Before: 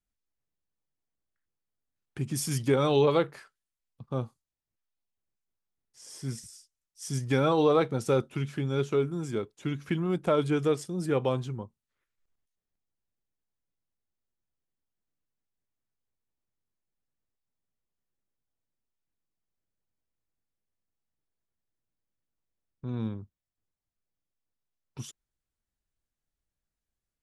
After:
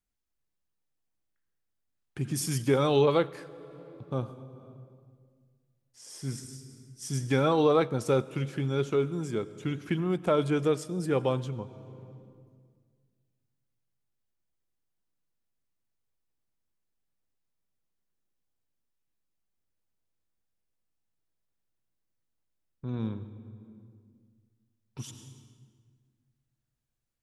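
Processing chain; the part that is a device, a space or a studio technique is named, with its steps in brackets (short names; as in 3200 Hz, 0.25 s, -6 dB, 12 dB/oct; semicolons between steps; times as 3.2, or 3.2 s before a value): compressed reverb return (on a send at -5 dB: reverb RT60 1.7 s, pre-delay 80 ms + compressor 10:1, threshold -37 dBFS, peak gain reduction 19 dB)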